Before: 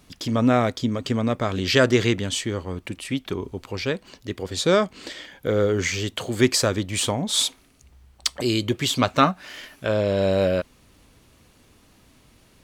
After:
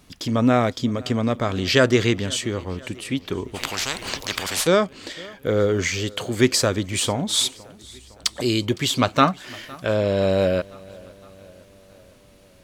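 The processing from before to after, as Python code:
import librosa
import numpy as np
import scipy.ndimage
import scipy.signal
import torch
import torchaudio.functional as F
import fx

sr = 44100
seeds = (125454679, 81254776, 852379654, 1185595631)

y = fx.echo_feedback(x, sr, ms=510, feedback_pct=59, wet_db=-23.0)
y = fx.spectral_comp(y, sr, ratio=10.0, at=(3.54, 4.66), fade=0.02)
y = y * 10.0 ** (1.0 / 20.0)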